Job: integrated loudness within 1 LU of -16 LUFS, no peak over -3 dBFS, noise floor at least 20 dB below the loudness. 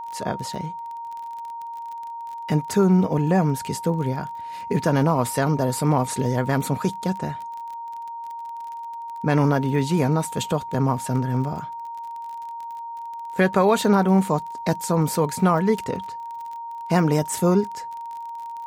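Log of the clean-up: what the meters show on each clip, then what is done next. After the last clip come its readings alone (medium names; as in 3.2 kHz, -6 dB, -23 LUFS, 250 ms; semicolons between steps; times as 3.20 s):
tick rate 28 per s; steady tone 930 Hz; tone level -31 dBFS; loudness -22.5 LUFS; peak level -6.5 dBFS; loudness target -16.0 LUFS
-> de-click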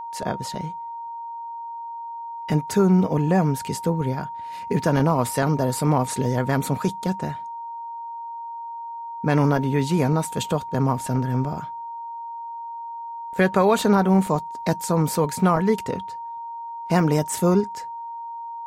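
tick rate 0 per s; steady tone 930 Hz; tone level -31 dBFS
-> band-stop 930 Hz, Q 30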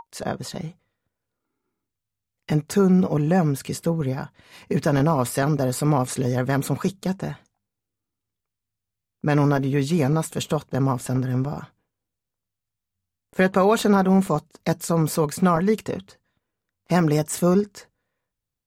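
steady tone not found; loudness -22.5 LUFS; peak level -7.0 dBFS; loudness target -16.0 LUFS
-> trim +6.5 dB; peak limiter -3 dBFS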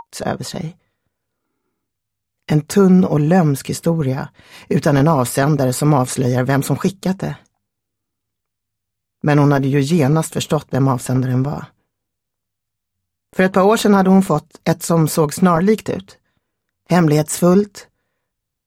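loudness -16.0 LUFS; peak level -3.0 dBFS; noise floor -78 dBFS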